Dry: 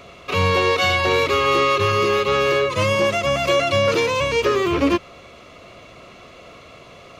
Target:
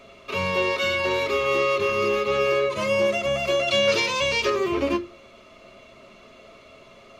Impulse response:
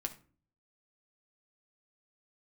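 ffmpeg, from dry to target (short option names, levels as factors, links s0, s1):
-filter_complex "[0:a]asettb=1/sr,asplit=3[s0][s1][s2];[s0]atrim=end=3.684[s3];[s1]atrim=start=3.68:end=4.5,asetpts=PTS-STARTPTS,afade=t=in:d=0.004:c=qsin,afade=t=out:st=0.816:d=0.004:c=qsin,equalizer=f=4400:t=o:w=2.1:g=9.5[s4];[s2]atrim=start=4.496[s5];[s3][s4]acrossfade=d=0.004:c1=hsin:c2=qsin[s6];[s6][s5]acrossfade=d=0.004:c1=qsin:c2=hsin[s7];[1:a]atrim=start_sample=2205,asetrate=88200,aresample=44100[s8];[s7][s8]afir=irnorm=-1:irlink=0"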